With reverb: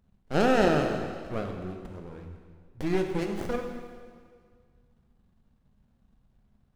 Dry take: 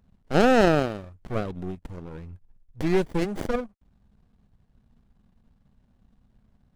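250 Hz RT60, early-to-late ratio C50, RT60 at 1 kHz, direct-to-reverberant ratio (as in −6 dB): 2.0 s, 5.0 dB, 1.9 s, 3.0 dB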